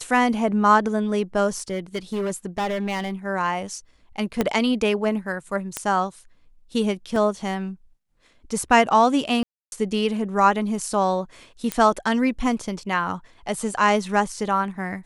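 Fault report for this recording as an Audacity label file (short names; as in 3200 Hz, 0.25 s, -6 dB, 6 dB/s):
1.480000	3.110000	clipped -21.5 dBFS
4.410000	4.410000	pop -7 dBFS
5.770000	5.770000	pop -9 dBFS
7.160000	7.160000	gap 2.5 ms
9.430000	9.720000	gap 0.291 s
11.720000	11.720000	pop -8 dBFS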